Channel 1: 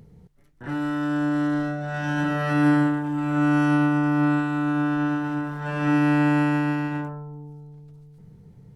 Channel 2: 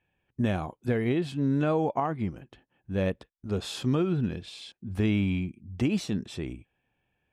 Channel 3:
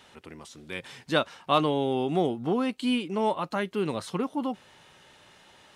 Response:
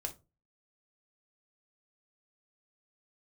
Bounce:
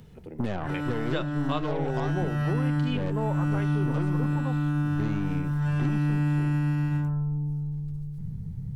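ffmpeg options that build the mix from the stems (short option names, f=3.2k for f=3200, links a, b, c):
-filter_complex "[0:a]asubboost=boost=10:cutoff=140,lowpass=f=2.8k:p=1,aemphasis=mode=production:type=75fm,volume=0.5dB[a];[1:a]lowpass=2.2k,aeval=exprs='0.178*(cos(1*acos(clip(val(0)/0.178,-1,1)))-cos(1*PI/2))+0.0224*(cos(8*acos(clip(val(0)/0.178,-1,1)))-cos(8*PI/2))':c=same,volume=1.5dB[b];[2:a]afwtdn=0.0141,volume=1.5dB,asplit=2[c][d];[d]volume=-5.5dB[e];[3:a]atrim=start_sample=2205[f];[e][f]afir=irnorm=-1:irlink=0[g];[a][b][c][g]amix=inputs=4:normalize=0,acrossover=split=110|4900[h][i][j];[h]acompressor=threshold=-32dB:ratio=4[k];[i]acompressor=threshold=-28dB:ratio=4[l];[j]acompressor=threshold=-60dB:ratio=4[m];[k][l][m]amix=inputs=3:normalize=0"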